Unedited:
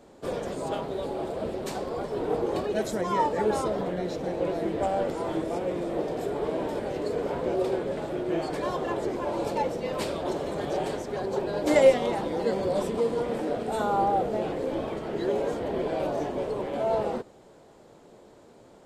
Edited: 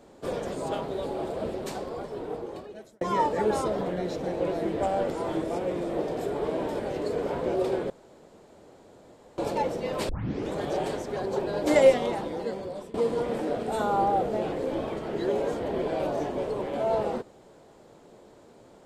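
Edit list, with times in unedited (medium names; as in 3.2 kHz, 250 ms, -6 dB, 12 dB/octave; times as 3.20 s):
1.46–3.01 s: fade out
7.90–9.38 s: room tone
10.09 s: tape start 0.45 s
11.94–12.94 s: fade out, to -17.5 dB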